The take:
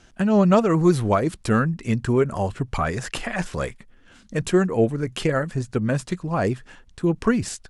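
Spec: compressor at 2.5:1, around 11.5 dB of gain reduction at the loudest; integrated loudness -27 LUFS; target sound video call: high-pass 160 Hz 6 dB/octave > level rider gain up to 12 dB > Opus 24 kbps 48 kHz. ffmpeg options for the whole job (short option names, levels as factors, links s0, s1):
-af "acompressor=threshold=0.0316:ratio=2.5,highpass=f=160:p=1,dynaudnorm=m=3.98,volume=2" -ar 48000 -c:a libopus -b:a 24k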